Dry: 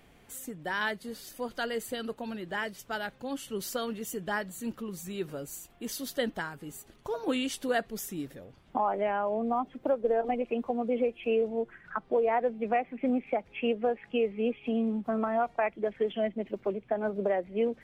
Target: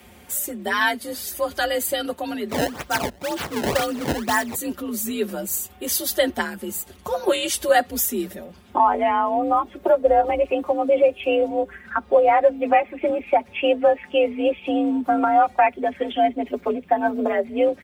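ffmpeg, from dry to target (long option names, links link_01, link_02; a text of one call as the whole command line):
ffmpeg -i in.wav -filter_complex "[0:a]highshelf=frequency=8700:gain=11.5,aecho=1:1:5.9:0.8,asplit=3[link_01][link_02][link_03];[link_01]afade=type=out:start_time=2.48:duration=0.02[link_04];[link_02]acrusher=samples=22:mix=1:aa=0.000001:lfo=1:lforange=35.2:lforate=2,afade=type=in:start_time=2.48:duration=0.02,afade=type=out:start_time=4.54:duration=0.02[link_05];[link_03]afade=type=in:start_time=4.54:duration=0.02[link_06];[link_04][link_05][link_06]amix=inputs=3:normalize=0,afreqshift=49,volume=8dB" out.wav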